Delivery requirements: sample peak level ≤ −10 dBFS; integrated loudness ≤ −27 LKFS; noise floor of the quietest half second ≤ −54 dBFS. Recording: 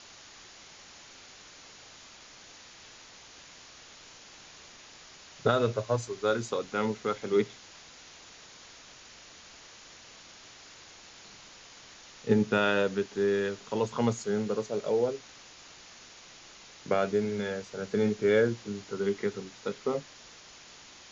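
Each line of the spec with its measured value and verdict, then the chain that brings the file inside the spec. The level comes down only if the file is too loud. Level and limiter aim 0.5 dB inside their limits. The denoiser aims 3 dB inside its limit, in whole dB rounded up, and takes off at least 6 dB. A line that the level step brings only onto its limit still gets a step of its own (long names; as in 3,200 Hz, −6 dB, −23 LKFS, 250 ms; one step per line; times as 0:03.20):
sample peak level −11.5 dBFS: in spec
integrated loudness −29.5 LKFS: in spec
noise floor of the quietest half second −52 dBFS: out of spec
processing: broadband denoise 6 dB, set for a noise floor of −52 dBFS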